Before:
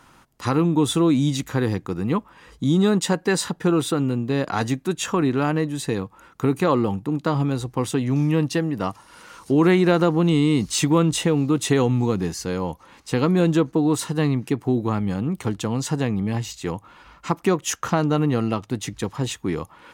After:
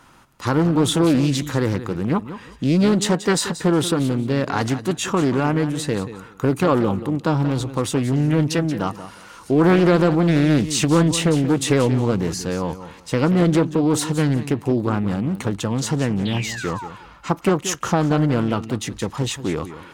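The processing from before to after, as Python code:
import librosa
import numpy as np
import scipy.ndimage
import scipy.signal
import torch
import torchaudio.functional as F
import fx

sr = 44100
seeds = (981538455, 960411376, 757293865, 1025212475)

y = fx.transient(x, sr, attack_db=0, sustain_db=4)
y = fx.spec_paint(y, sr, seeds[0], shape='fall', start_s=16.25, length_s=0.63, low_hz=800.0, high_hz=3700.0, level_db=-34.0)
y = fx.echo_feedback(y, sr, ms=181, feedback_pct=21, wet_db=-13)
y = fx.doppler_dist(y, sr, depth_ms=0.4)
y = F.gain(torch.from_numpy(y), 1.5).numpy()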